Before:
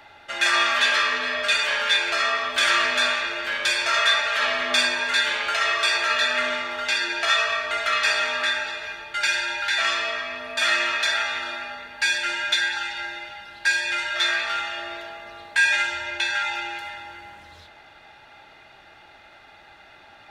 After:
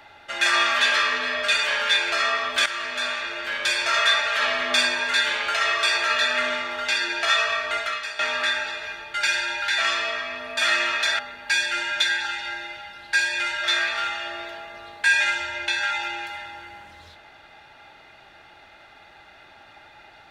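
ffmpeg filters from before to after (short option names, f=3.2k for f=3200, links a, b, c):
-filter_complex "[0:a]asplit=4[a][b][c][d];[a]atrim=end=2.66,asetpts=PTS-STARTPTS,afade=t=out:st=2.656:d=0.004:c=hsin:silence=0.237137[e];[b]atrim=start=2.66:end=8.19,asetpts=PTS-STARTPTS,afade=t=in:d=1.47:c=qsin:silence=0.237137,afade=t=out:st=5.11:d=0.42:c=qua:silence=0.211349[f];[c]atrim=start=8.19:end=11.192,asetpts=PTS-STARTPTS,afade=t=in:d=0.004:c=hsin:silence=0.211349[g];[d]atrim=start=11.708[h];[e][f][g]concat=n=3:v=0:a=1[i];[i][h]acrossfade=d=0.004:c1=hsin:c2=hsin"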